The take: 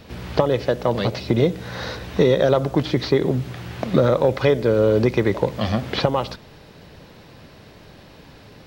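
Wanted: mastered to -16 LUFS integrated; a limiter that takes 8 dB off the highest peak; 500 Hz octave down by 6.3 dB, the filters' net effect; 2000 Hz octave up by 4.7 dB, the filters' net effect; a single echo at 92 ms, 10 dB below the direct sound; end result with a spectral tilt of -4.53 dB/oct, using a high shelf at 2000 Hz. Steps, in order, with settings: bell 500 Hz -8 dB; high shelf 2000 Hz +3.5 dB; bell 2000 Hz +4 dB; limiter -12 dBFS; echo 92 ms -10 dB; gain +8.5 dB

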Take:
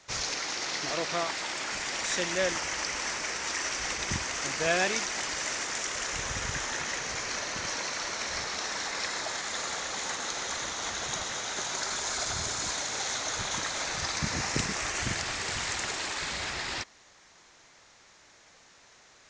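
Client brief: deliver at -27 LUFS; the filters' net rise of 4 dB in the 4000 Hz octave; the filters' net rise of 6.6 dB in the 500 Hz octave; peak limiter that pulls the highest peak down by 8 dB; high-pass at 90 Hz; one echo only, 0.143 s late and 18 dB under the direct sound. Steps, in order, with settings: HPF 90 Hz; bell 500 Hz +8 dB; bell 4000 Hz +5 dB; limiter -17.5 dBFS; echo 0.143 s -18 dB; gain +1.5 dB

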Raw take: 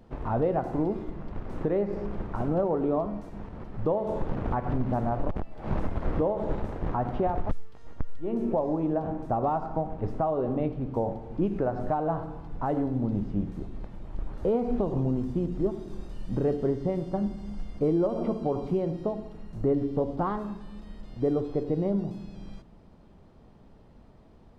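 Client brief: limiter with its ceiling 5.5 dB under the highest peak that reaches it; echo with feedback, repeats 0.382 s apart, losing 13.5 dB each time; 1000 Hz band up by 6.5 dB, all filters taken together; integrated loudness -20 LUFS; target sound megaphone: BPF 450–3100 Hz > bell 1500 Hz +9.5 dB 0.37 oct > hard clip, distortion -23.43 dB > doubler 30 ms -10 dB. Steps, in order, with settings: bell 1000 Hz +8.5 dB; limiter -18 dBFS; BPF 450–3100 Hz; bell 1500 Hz +9.5 dB 0.37 oct; feedback echo 0.382 s, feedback 21%, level -13.5 dB; hard clip -20.5 dBFS; doubler 30 ms -10 dB; gain +11.5 dB

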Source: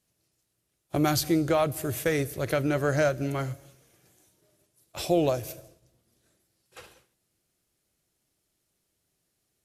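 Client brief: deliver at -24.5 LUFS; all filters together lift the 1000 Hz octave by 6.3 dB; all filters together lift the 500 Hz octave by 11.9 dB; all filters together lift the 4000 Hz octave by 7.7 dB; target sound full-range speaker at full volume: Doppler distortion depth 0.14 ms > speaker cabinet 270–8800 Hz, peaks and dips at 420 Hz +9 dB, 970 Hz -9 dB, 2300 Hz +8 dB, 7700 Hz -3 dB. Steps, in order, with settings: bell 500 Hz +9 dB; bell 1000 Hz +7.5 dB; bell 4000 Hz +8.5 dB; Doppler distortion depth 0.14 ms; speaker cabinet 270–8800 Hz, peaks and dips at 420 Hz +9 dB, 970 Hz -9 dB, 2300 Hz +8 dB, 7700 Hz -3 dB; gain -6.5 dB

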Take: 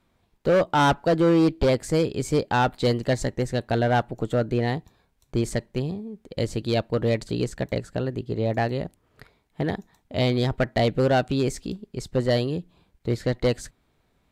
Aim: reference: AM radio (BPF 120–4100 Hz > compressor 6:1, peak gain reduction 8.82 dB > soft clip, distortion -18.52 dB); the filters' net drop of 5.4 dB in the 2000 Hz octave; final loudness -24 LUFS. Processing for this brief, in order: BPF 120–4100 Hz; bell 2000 Hz -7.5 dB; compressor 6:1, threshold -25 dBFS; soft clip -21 dBFS; gain +9 dB

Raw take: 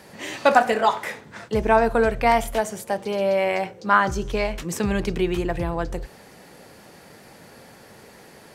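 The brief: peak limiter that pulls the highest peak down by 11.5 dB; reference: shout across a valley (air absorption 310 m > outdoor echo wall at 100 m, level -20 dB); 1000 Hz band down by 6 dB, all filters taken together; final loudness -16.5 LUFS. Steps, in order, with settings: bell 1000 Hz -6.5 dB; limiter -16 dBFS; air absorption 310 m; outdoor echo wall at 100 m, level -20 dB; gain +12.5 dB

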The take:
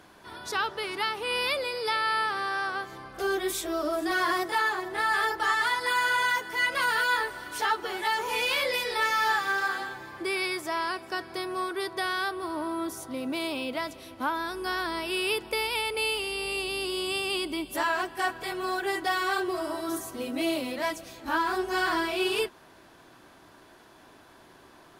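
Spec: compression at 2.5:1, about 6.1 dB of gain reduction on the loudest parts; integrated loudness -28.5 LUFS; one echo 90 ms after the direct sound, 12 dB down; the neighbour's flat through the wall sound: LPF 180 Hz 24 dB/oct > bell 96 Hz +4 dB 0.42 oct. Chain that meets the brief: compressor 2.5:1, threshold -31 dBFS; LPF 180 Hz 24 dB/oct; bell 96 Hz +4 dB 0.42 oct; echo 90 ms -12 dB; gain +29.5 dB

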